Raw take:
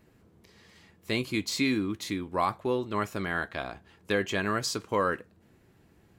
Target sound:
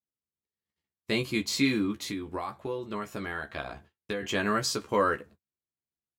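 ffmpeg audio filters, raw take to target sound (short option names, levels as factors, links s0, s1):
-filter_complex "[0:a]agate=range=0.00631:threshold=0.00282:ratio=16:detection=peak,asettb=1/sr,asplit=3[s0][s1][s2];[s0]atrim=end=1.914[s3];[s1]atrim=start=1.91:end=4.23,asetpts=PTS-STARTPTS,afade=t=in:d=0.004:c=qsin,afade=t=out:st=2.316:d=0.004:c=qsin,acompressor=threshold=0.0251:ratio=6[s4];[s2]atrim=start=4.226[s5];[s3][s4]acrossfade=d=0.004:c1=hsin:c2=qsin[s6];[s6][s5]acrossfade=d=0.004:c1=qsin:c2=hsin,asplit=2[s7][s8];[s8]adelay=14,volume=0.596[s9];[s7][s9]amix=inputs=2:normalize=0"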